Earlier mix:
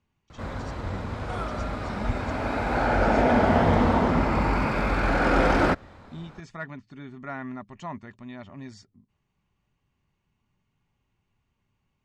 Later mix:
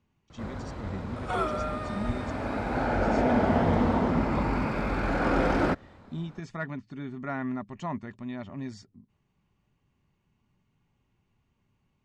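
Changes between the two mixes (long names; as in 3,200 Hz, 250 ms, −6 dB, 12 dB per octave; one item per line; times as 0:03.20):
first sound −6.5 dB
second sound +4.5 dB
master: add parametric band 230 Hz +4.5 dB 2.8 octaves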